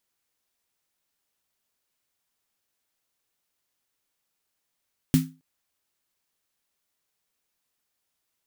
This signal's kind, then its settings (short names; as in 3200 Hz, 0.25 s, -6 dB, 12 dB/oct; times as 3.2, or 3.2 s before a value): snare drum length 0.27 s, tones 160 Hz, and 260 Hz, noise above 1200 Hz, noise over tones -12 dB, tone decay 0.30 s, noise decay 0.24 s